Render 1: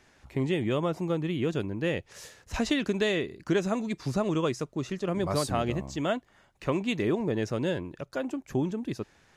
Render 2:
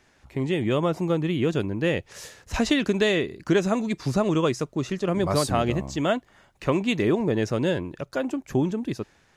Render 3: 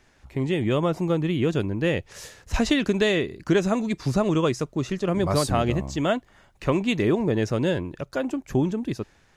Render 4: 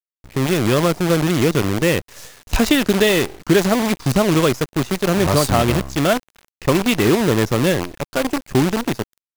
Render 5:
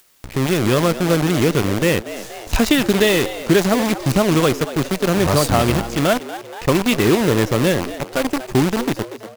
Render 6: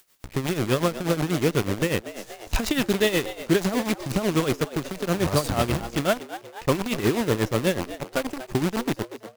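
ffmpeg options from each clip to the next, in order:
-af "dynaudnorm=f=120:g=9:m=5dB"
-af "lowshelf=f=63:g=9.5"
-af "acrusher=bits=5:dc=4:mix=0:aa=0.000001,volume=6dB"
-filter_complex "[0:a]asplit=5[a][b][c][d][e];[b]adelay=238,afreqshift=110,volume=-14dB[f];[c]adelay=476,afreqshift=220,volume=-22.6dB[g];[d]adelay=714,afreqshift=330,volume=-31.3dB[h];[e]adelay=952,afreqshift=440,volume=-39.9dB[i];[a][f][g][h][i]amix=inputs=5:normalize=0,acompressor=mode=upward:threshold=-24dB:ratio=2.5"
-af "tremolo=f=8.2:d=0.75,volume=-4dB"

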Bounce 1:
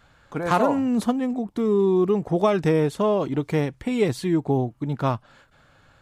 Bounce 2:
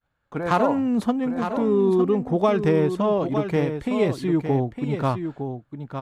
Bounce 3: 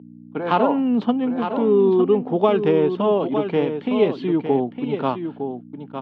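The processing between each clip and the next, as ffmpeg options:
-filter_complex "[0:a]agate=range=-33dB:threshold=-44dB:ratio=3:detection=peak,asplit=2[a][b];[b]adynamicsmooth=sensitivity=3:basefreq=3.8k,volume=0dB[c];[a][c]amix=inputs=2:normalize=0,aecho=1:1:909:0.398,volume=-6dB"
-af "agate=range=-27dB:threshold=-37dB:ratio=16:detection=peak,aeval=exprs='val(0)+0.02*(sin(2*PI*60*n/s)+sin(2*PI*2*60*n/s)/2+sin(2*PI*3*60*n/s)/3+sin(2*PI*4*60*n/s)/4+sin(2*PI*5*60*n/s)/5)':c=same,highpass=f=170:w=0.5412,highpass=f=170:w=1.3066,equalizer=f=250:t=q:w=4:g=3,equalizer=f=420:t=q:w=4:g=5,equalizer=f=850:t=q:w=4:g=4,equalizer=f=1.9k:t=q:w=4:g=-4,equalizer=f=3k:t=q:w=4:g=8,lowpass=f=3.9k:w=0.5412,lowpass=f=3.9k:w=1.3066"

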